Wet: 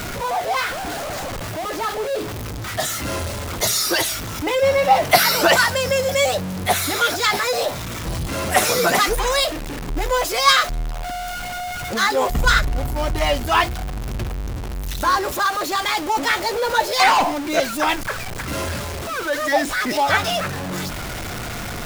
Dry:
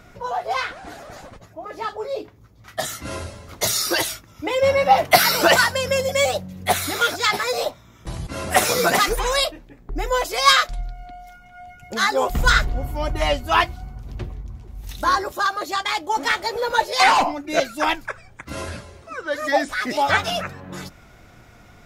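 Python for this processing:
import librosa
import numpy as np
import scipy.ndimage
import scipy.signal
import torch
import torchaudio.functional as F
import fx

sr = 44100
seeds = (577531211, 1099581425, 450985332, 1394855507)

y = x + 0.5 * 10.0 ** (-22.5 / 20.0) * np.sign(x)
y = y * librosa.db_to_amplitude(-1.0)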